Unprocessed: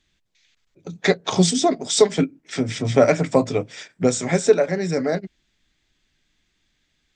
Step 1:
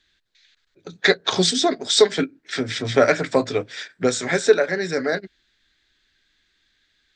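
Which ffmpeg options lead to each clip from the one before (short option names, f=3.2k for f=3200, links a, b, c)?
-af "equalizer=f=160:t=o:w=0.67:g=-5,equalizer=f=400:t=o:w=0.67:g=4,equalizer=f=1.6k:t=o:w=0.67:g=12,equalizer=f=4k:t=o:w=0.67:g=11,volume=-3.5dB"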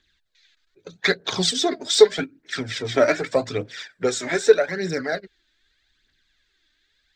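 -af "aphaser=in_gain=1:out_gain=1:delay=3.4:decay=0.54:speed=0.82:type=triangular,volume=-3.5dB"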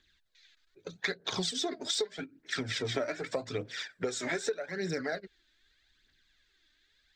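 -af "acompressor=threshold=-27dB:ratio=12,volume=-2.5dB"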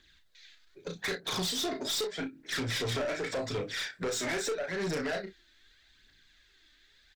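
-af "aecho=1:1:34|60:0.473|0.133,aeval=exprs='(tanh(56.2*val(0)+0.1)-tanh(0.1))/56.2':c=same,volume=6dB"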